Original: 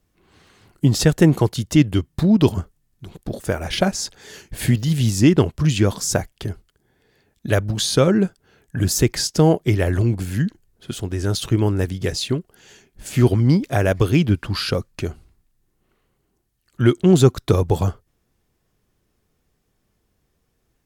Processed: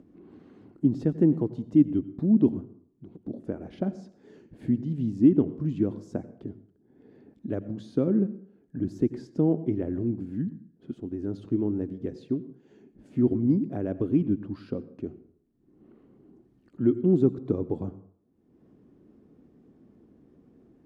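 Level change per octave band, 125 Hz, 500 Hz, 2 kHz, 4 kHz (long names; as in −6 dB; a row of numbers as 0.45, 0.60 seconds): −13.0 dB, −9.0 dB, below −25 dB, below −30 dB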